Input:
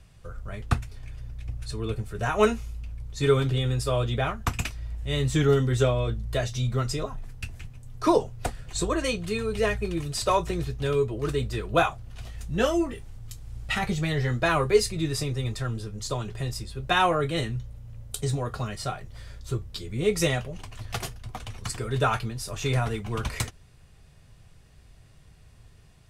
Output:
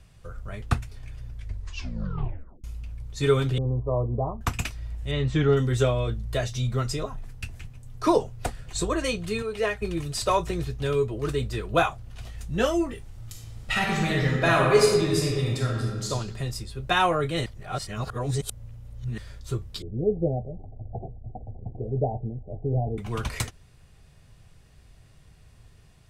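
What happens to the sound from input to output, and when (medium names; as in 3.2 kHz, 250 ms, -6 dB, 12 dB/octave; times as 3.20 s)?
1.30 s: tape stop 1.34 s
3.58–4.41 s: steep low-pass 1.1 kHz 96 dB/octave
5.11–5.57 s: low-pass 3.4 kHz
9.42–9.82 s: tone controls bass -11 dB, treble -5 dB
13.10–16.10 s: reverb throw, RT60 1.4 s, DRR -1.5 dB
17.46–19.18 s: reverse
19.82–22.98 s: steep low-pass 800 Hz 96 dB/octave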